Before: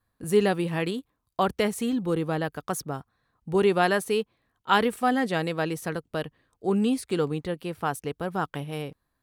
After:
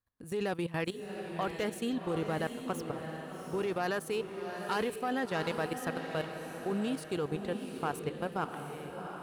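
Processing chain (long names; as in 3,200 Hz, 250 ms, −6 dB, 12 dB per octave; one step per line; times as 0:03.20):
phase distortion by the signal itself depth 0.073 ms
dynamic equaliser 230 Hz, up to −4 dB, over −35 dBFS, Q 1.3
output level in coarse steps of 15 dB
feedback delay with all-pass diffusion 729 ms, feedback 41%, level −6.5 dB
level −2 dB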